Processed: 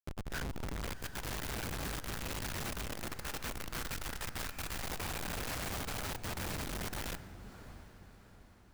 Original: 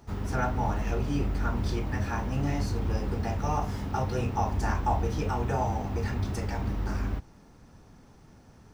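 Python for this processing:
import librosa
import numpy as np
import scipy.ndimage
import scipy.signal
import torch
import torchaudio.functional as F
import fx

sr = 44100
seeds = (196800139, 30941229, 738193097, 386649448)

y = fx.spec_dropout(x, sr, seeds[0], share_pct=34)
y = fx.doppler_pass(y, sr, speed_mps=31, closest_m=13.0, pass_at_s=3.58)
y = fx.highpass(y, sr, hz=91.0, slope=6)
y = fx.bass_treble(y, sr, bass_db=8, treble_db=1)
y = fx.over_compress(y, sr, threshold_db=-42.0, ratio=-1.0)
y = fx.band_shelf(y, sr, hz=1900.0, db=12.5, octaves=1.2)
y = fx.schmitt(y, sr, flips_db=-44.0)
y = fx.echo_diffused(y, sr, ms=727, feedback_pct=44, wet_db=-14.5)
y = (np.mod(10.0 ** (41.0 / 20.0) * y + 1.0, 2.0) - 1.0) / 10.0 ** (41.0 / 20.0)
y = y * 10.0 ** (4.5 / 20.0)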